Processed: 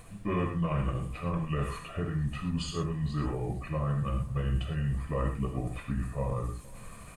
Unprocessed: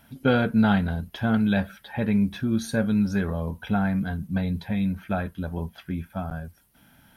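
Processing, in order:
pitch shift by two crossfaded delay taps −5 semitones
reversed playback
downward compressor, threshold −36 dBFS, peak gain reduction 17.5 dB
reversed playback
background noise brown −58 dBFS
on a send: single-tap delay 464 ms −22 dB
on the sum: reverb whose tail is shaped and stops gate 140 ms flat, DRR 2.5 dB
level +7 dB

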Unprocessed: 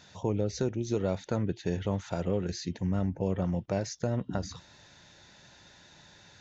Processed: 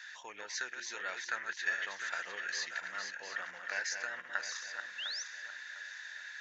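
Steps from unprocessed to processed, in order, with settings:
feedback delay that plays each chunk backwards 352 ms, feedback 61%, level −6.5 dB
high-pass with resonance 1,700 Hz, resonance Q 8.4
sound drawn into the spectrogram rise, 0:04.98–0:05.23, 2,600–6,300 Hz −40 dBFS

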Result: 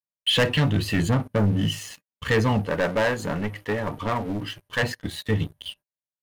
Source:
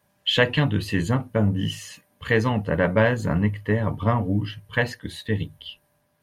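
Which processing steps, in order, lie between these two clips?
leveller curve on the samples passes 3
noise gate −38 dBFS, range −29 dB
0:02.66–0:04.83: parametric band 100 Hz −11 dB 2.5 octaves
level −8 dB

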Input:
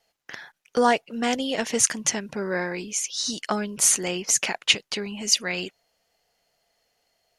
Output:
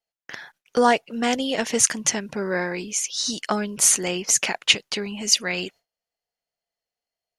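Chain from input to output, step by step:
noise gate with hold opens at −42 dBFS
level +2 dB

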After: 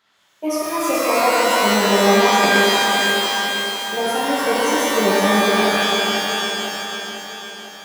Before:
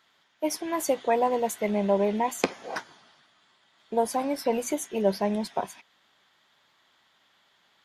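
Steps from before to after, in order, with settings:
feedback delay that plays each chunk backwards 250 ms, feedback 72%, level −5 dB
reverb with rising layers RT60 2 s, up +12 semitones, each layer −2 dB, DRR −6.5 dB
level −1.5 dB

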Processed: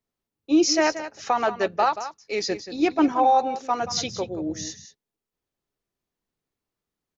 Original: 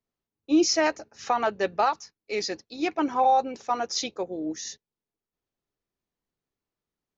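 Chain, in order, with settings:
0:02.49–0:03.12: low-shelf EQ 390 Hz +8 dB
0:03.81–0:04.66: noise in a band 81–210 Hz −44 dBFS
single-tap delay 180 ms −12 dB
level +2 dB

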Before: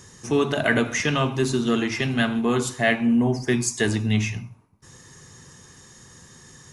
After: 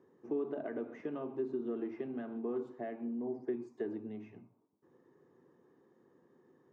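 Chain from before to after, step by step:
downward compressor, threshold −22 dBFS, peak gain reduction 7.5 dB
four-pole ladder band-pass 410 Hz, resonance 40%

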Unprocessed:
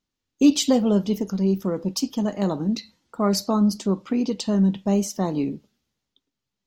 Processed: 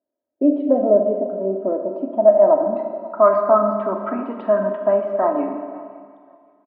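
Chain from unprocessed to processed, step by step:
comb filter 3.1 ms, depth 74%
in parallel at 0 dB: brickwall limiter −14.5 dBFS, peak gain reduction 11.5 dB
on the sum: loudspeaker in its box 350–2,800 Hz, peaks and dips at 380 Hz −7 dB, 630 Hz +10 dB, 1,600 Hz +8 dB
low-pass filter sweep 530 Hz → 1,300 Hz, 0:01.62–0:03.45
on a send: repeating echo 541 ms, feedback 21%, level −21.5 dB
on the sum: four-comb reverb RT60 2 s, combs from 30 ms, DRR 4.5 dB
level −4.5 dB

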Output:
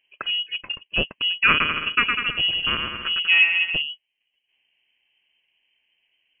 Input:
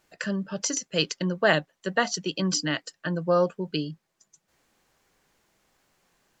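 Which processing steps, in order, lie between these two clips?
adaptive Wiener filter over 25 samples
0:01.49–0:03.82: bouncing-ball delay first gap 110 ms, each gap 0.8×, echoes 5
voice inversion scrambler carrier 3,100 Hz
level +3.5 dB

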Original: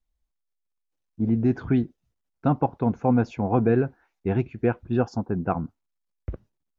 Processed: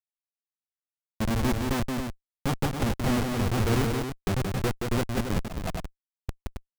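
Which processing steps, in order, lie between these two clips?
mu-law and A-law mismatch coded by A
comparator with hysteresis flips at −23.5 dBFS
on a send: loudspeakers that aren't time-aligned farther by 60 metres −4 dB, 94 metres −7 dB
0:05.41–0:06.29: on the sum: volume swells 140 ms
level +1.5 dB

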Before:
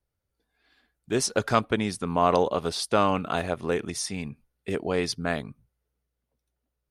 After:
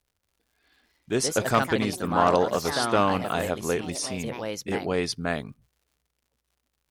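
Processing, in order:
delay with pitch and tempo change per echo 302 ms, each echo +3 semitones, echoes 3, each echo −6 dB
surface crackle 140 per second −56 dBFS

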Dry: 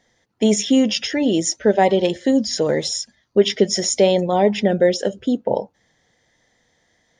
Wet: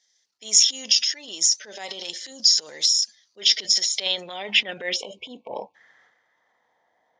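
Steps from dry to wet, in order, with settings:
transient designer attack −9 dB, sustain +9 dB
band-pass filter sweep 5,400 Hz → 850 Hz, 0:03.33–0:06.96
time-frequency box erased 0:04.96–0:05.75, 1,100–2,200 Hz
level +5 dB

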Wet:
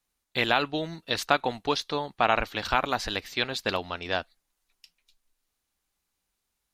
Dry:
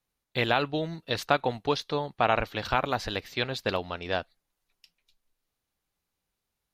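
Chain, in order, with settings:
graphic EQ with 10 bands 125 Hz −8 dB, 500 Hz −4 dB, 8,000 Hz +4 dB
level +2.5 dB

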